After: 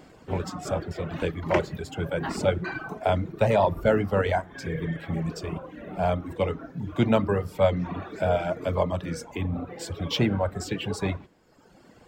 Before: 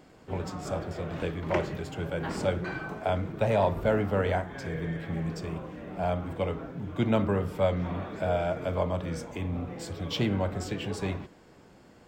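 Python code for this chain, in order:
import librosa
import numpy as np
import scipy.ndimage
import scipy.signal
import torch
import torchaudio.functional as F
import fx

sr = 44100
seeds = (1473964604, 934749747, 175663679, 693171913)

y = fx.dereverb_blind(x, sr, rt60_s=1.2)
y = y * 10.0 ** (5.0 / 20.0)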